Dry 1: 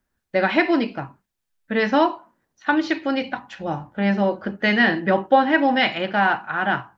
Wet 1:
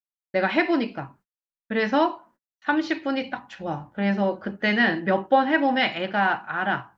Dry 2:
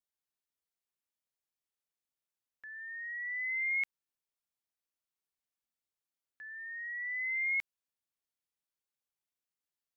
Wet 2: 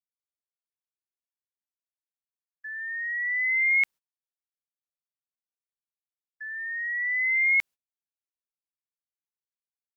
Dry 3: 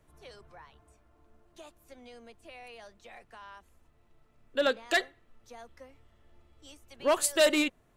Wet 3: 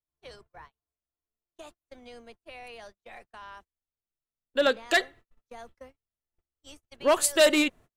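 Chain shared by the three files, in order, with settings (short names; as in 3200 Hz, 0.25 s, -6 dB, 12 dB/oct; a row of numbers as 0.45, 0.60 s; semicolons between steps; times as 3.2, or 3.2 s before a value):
gate -51 dBFS, range -39 dB; match loudness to -24 LUFS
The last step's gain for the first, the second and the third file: -3.0, +10.0, +3.5 dB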